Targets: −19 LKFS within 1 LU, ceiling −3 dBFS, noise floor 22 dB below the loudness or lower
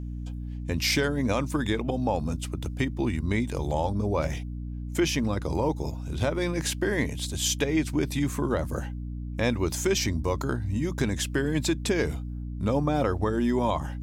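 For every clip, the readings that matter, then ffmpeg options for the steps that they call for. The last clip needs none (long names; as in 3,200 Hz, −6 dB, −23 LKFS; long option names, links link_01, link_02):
mains hum 60 Hz; hum harmonics up to 300 Hz; level of the hum −32 dBFS; integrated loudness −28.0 LKFS; sample peak −13.0 dBFS; target loudness −19.0 LKFS
→ -af "bandreject=frequency=60:width_type=h:width=4,bandreject=frequency=120:width_type=h:width=4,bandreject=frequency=180:width_type=h:width=4,bandreject=frequency=240:width_type=h:width=4,bandreject=frequency=300:width_type=h:width=4"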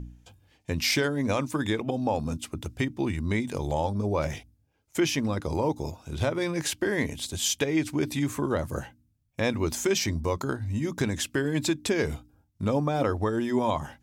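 mains hum none found; integrated loudness −28.5 LKFS; sample peak −13.5 dBFS; target loudness −19.0 LKFS
→ -af "volume=9.5dB"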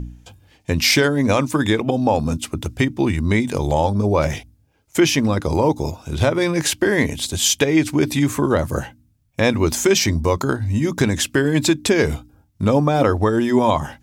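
integrated loudness −19.0 LKFS; sample peak −4.0 dBFS; background noise floor −59 dBFS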